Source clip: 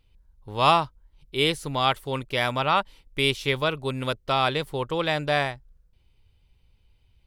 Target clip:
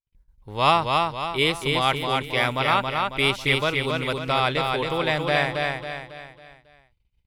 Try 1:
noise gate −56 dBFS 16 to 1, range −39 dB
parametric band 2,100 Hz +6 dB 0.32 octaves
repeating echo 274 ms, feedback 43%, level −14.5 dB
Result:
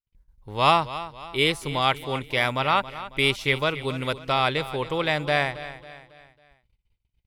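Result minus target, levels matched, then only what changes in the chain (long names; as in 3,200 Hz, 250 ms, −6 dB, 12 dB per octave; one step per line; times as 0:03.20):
echo-to-direct −11 dB
change: repeating echo 274 ms, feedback 43%, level −3.5 dB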